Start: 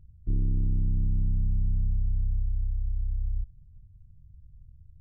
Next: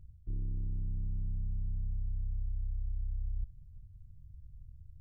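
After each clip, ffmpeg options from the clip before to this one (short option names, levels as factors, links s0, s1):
-af "equalizer=f=230:w=1.9:g=-5.5,areverse,acompressor=threshold=0.0251:ratio=6,areverse"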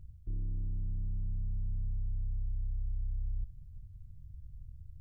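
-af "alimiter=level_in=2.66:limit=0.0631:level=0:latency=1:release=13,volume=0.376,volume=1.41"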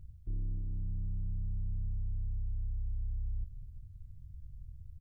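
-af "aecho=1:1:258:0.2"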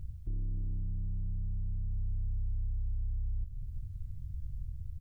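-af "alimiter=level_in=4.73:limit=0.0631:level=0:latency=1:release=330,volume=0.211,volume=2.66"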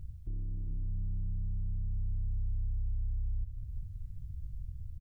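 -af "aecho=1:1:400:0.335,volume=0.794"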